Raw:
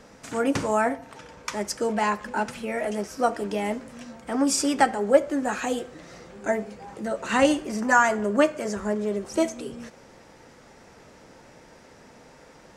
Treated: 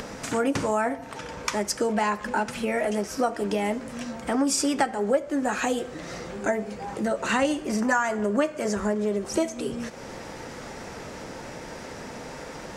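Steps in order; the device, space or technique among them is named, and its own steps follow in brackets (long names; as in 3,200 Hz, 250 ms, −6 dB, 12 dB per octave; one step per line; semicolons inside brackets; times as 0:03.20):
upward and downward compression (upward compression, threshold −37 dBFS; downward compressor 3 to 1, threshold −30 dBFS, peak gain reduction 14 dB)
level +6.5 dB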